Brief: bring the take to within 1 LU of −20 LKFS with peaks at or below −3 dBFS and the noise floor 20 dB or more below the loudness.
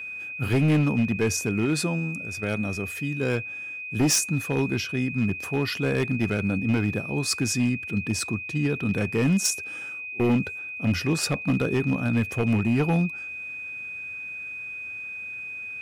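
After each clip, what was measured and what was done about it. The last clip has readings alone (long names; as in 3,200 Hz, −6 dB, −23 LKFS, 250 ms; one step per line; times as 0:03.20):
share of clipped samples 1.6%; peaks flattened at −16.5 dBFS; interfering tone 2,500 Hz; level of the tone −33 dBFS; integrated loudness −26.0 LKFS; sample peak −16.5 dBFS; target loudness −20.0 LKFS
→ clipped peaks rebuilt −16.5 dBFS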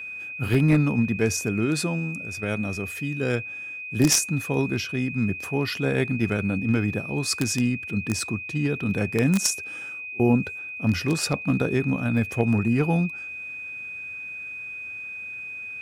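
share of clipped samples 0.0%; interfering tone 2,500 Hz; level of the tone −33 dBFS
→ notch filter 2,500 Hz, Q 30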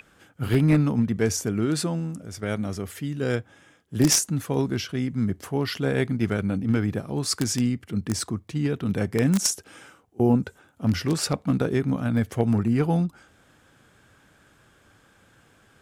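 interfering tone none found; integrated loudness −25.0 LKFS; sample peak −7.0 dBFS; target loudness −20.0 LKFS
→ level +5 dB
brickwall limiter −3 dBFS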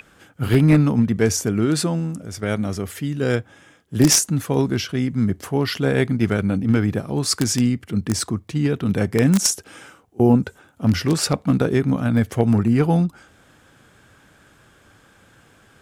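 integrated loudness −20.0 LKFS; sample peak −3.0 dBFS; background noise floor −54 dBFS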